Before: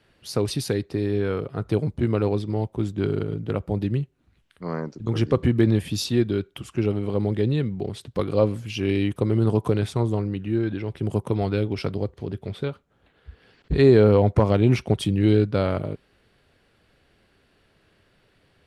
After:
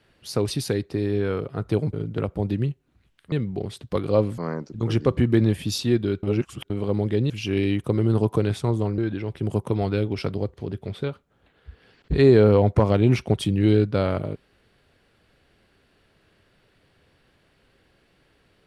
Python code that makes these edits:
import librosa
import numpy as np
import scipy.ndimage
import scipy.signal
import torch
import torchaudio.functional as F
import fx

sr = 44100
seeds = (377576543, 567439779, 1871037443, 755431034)

y = fx.edit(x, sr, fx.cut(start_s=1.93, length_s=1.32),
    fx.reverse_span(start_s=6.49, length_s=0.47),
    fx.move(start_s=7.56, length_s=1.06, to_s=4.64),
    fx.cut(start_s=10.3, length_s=0.28), tone=tone)